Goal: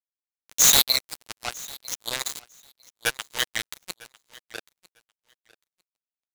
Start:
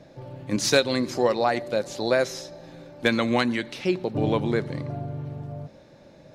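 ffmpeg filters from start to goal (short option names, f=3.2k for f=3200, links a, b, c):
-filter_complex "[0:a]afftfilt=real='re*pow(10,23/40*sin(2*PI*(1.1*log(max(b,1)*sr/1024/100)/log(2)-(0.67)*(pts-256)/sr)))':imag='im*pow(10,23/40*sin(2*PI*(1.1*log(max(b,1)*sr/1024/100)/log(2)-(0.67)*(pts-256)/sr)))':win_size=1024:overlap=0.75,highpass=f=340:w=0.5412,highpass=f=340:w=1.3066,aderivative,aecho=1:1:6.5:0.6,asplit=2[a][b];[b]acompressor=threshold=-43dB:ratio=16,volume=-1dB[c];[a][c]amix=inputs=2:normalize=0,acrusher=bits=3:mix=0:aa=0.5,aeval=exprs='(mod(5.96*val(0)+1,2)-1)/5.96':c=same,aecho=1:1:950|1900:0.0794|0.0135,volume=6.5dB"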